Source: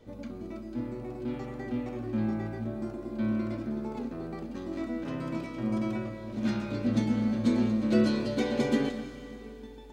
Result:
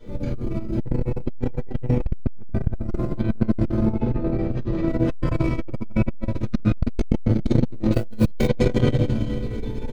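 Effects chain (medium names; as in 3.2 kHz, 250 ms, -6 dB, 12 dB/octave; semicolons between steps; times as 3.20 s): octave divider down 1 oct, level 0 dB; 2.66–3.12 s: compressor with a negative ratio -36 dBFS, ratio -0.5; 3.85–4.88 s: distance through air 120 m; on a send: delay 1154 ms -22 dB; on the sum: simulated room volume 98 m³, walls mixed, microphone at 2 m; 7.93–8.48 s: companded quantiser 6-bit; band-stop 800 Hz, Q 21; de-hum 58.42 Hz, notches 27; peak limiter -10 dBFS, peak gain reduction 8 dB; bass shelf 71 Hz +11 dB; transformer saturation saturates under 170 Hz; trim +2 dB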